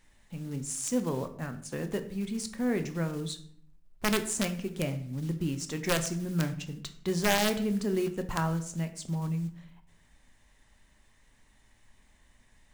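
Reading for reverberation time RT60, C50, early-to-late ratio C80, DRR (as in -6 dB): 0.60 s, 12.5 dB, 15.5 dB, 7.5 dB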